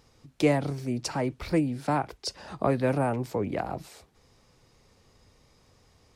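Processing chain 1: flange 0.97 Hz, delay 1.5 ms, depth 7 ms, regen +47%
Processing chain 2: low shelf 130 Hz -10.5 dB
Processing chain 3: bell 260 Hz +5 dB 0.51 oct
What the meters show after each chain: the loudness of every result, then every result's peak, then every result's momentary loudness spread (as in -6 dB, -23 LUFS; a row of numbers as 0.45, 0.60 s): -33.5, -30.5, -27.0 LUFS; -15.0, -12.0, -8.5 dBFS; 10, 9, 11 LU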